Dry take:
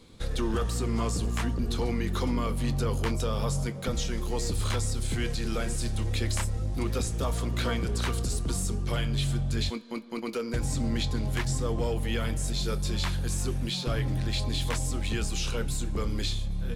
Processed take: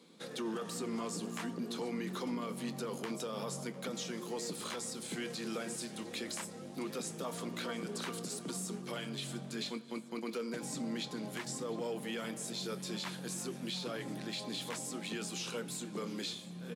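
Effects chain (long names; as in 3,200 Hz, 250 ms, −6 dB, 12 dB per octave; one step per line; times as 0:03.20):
elliptic high-pass filter 170 Hz, stop band 60 dB
brickwall limiter −25.5 dBFS, peak gain reduction 7.5 dB
repeating echo 703 ms, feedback 60%, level −20 dB
level −4.5 dB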